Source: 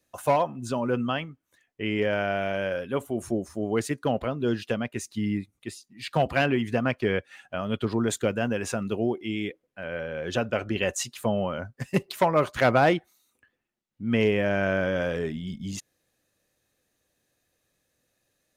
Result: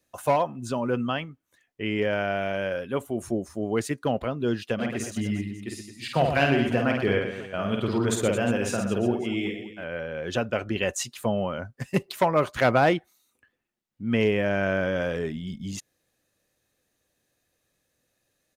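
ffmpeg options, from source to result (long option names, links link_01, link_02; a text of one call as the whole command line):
ffmpeg -i in.wav -filter_complex "[0:a]asplit=3[link_01][link_02][link_03];[link_01]afade=type=out:start_time=4.78:duration=0.02[link_04];[link_02]aecho=1:1:50|120|218|355.2|547.3:0.631|0.398|0.251|0.158|0.1,afade=type=in:start_time=4.78:duration=0.02,afade=type=out:start_time=9.83:duration=0.02[link_05];[link_03]afade=type=in:start_time=9.83:duration=0.02[link_06];[link_04][link_05][link_06]amix=inputs=3:normalize=0" out.wav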